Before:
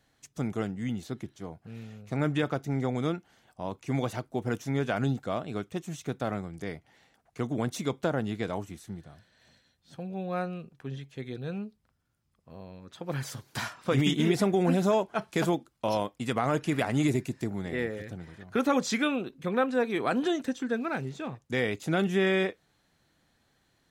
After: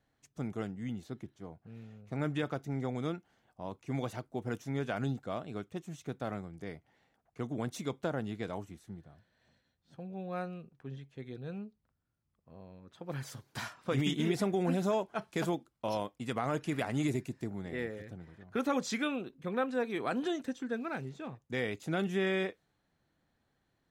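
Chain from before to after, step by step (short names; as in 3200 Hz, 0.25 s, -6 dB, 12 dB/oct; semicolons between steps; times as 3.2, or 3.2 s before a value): mismatched tape noise reduction decoder only; gain -6 dB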